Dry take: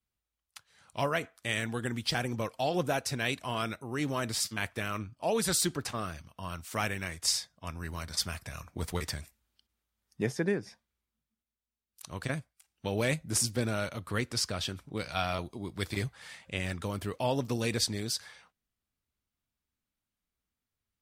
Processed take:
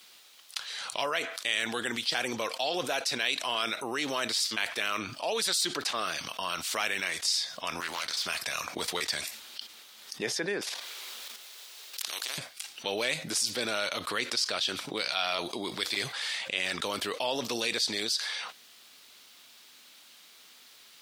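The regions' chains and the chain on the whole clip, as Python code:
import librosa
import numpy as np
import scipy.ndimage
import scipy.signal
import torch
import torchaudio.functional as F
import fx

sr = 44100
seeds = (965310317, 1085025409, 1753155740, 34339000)

y = fx.chain(x, sr, fx.low_shelf(hz=420.0, db=-10.5),
    fx.tube_stage(drive_db=37.0, bias=0.5),
    fx.doppler_dist(depth_ms=0.31), at=(7.8, 8.26))
y = fx.chain(y, sr, fx.level_steps(step_db=10),
    fx.highpass(hz=350.0, slope=24),
    fx.spectral_comp(ratio=4.0), at=(10.61, 12.38))
y = scipy.signal.sosfilt(scipy.signal.butter(2, 410.0, 'highpass', fs=sr, output='sos'), y)
y = fx.peak_eq(y, sr, hz=3900.0, db=11.0, octaves=1.5)
y = fx.env_flatten(y, sr, amount_pct=70)
y = y * 10.0 ** (-9.0 / 20.0)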